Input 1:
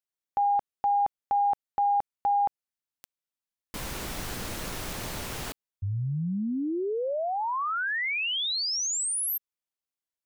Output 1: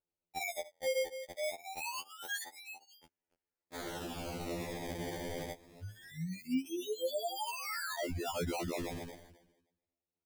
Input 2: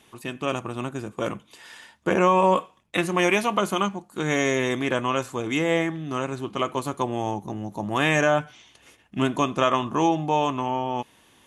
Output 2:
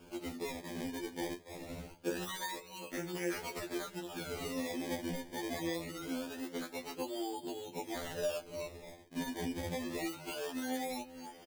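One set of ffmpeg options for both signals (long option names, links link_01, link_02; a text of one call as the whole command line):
ffmpeg -i in.wav -af "aecho=1:1:284|568:0.0841|0.021,flanger=delay=8.3:depth=4.8:regen=-12:speed=0.81:shape=sinusoidal,highpass=330,equalizer=frequency=660:width_type=q:width=4:gain=-9,equalizer=frequency=1100:width_type=q:width=4:gain=-7,equalizer=frequency=1600:width_type=q:width=4:gain=-6,equalizer=frequency=2600:width_type=q:width=4:gain=-9,lowpass=frequency=4700:width=0.5412,lowpass=frequency=4700:width=1.3066,acrusher=samples=22:mix=1:aa=0.000001:lfo=1:lforange=22:lforate=0.24,acompressor=threshold=-43dB:ratio=6:attack=1.4:release=185:knee=6:detection=rms,equalizer=frequency=1100:width=3:gain=-9.5,afftfilt=real='re*2*eq(mod(b,4),0)':imag='im*2*eq(mod(b,4),0)':win_size=2048:overlap=0.75,volume=12dB" out.wav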